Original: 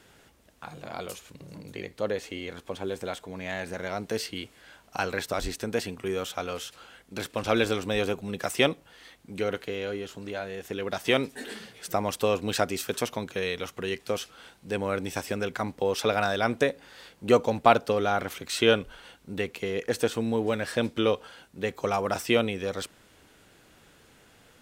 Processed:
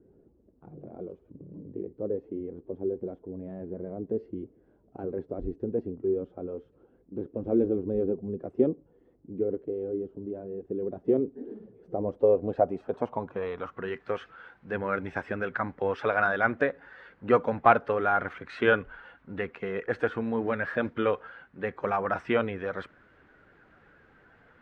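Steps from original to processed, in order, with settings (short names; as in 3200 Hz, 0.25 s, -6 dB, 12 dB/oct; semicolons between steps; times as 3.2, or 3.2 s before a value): bin magnitudes rounded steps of 15 dB; low-pass sweep 370 Hz -> 1600 Hz, 11.72–14.06; gain -2.5 dB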